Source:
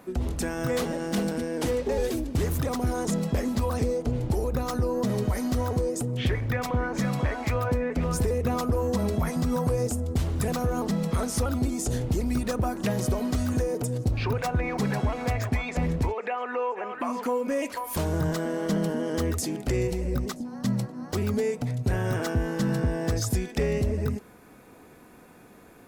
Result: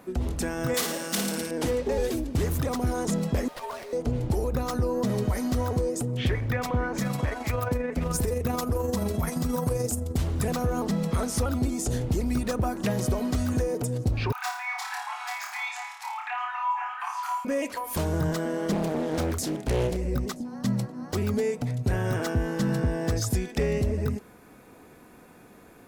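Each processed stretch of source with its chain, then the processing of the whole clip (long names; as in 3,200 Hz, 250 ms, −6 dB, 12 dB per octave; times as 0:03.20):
0:00.74–0:01.51: spectral tilt +3 dB per octave + flutter between parallel walls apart 9.5 metres, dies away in 0.61 s
0:03.48–0:03.93: Chebyshev high-pass filter 610 Hz, order 4 + frequency shifter −82 Hz + windowed peak hold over 5 samples
0:06.98–0:10.18: high-shelf EQ 7,200 Hz +9.5 dB + amplitude modulation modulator 23 Hz, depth 25%
0:14.32–0:17.45: Chebyshev high-pass filter 750 Hz, order 8 + flutter between parallel walls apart 4.7 metres, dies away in 0.52 s
0:18.72–0:19.97: double-tracking delay 32 ms −12 dB + highs frequency-modulated by the lows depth 0.84 ms
whole clip: no processing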